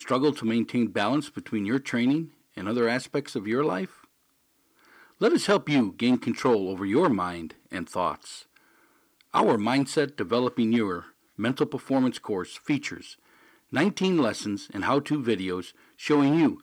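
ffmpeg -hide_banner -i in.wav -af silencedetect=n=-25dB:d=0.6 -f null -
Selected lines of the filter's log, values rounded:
silence_start: 3.85
silence_end: 5.22 | silence_duration: 1.37
silence_start: 8.12
silence_end: 9.35 | silence_duration: 1.23
silence_start: 12.94
silence_end: 13.74 | silence_duration: 0.80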